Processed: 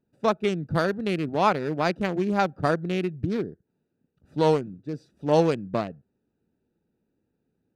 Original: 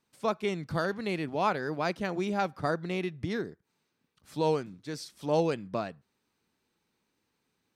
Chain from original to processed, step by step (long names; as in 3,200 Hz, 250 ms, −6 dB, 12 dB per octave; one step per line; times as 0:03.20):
adaptive Wiener filter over 41 samples
level +7 dB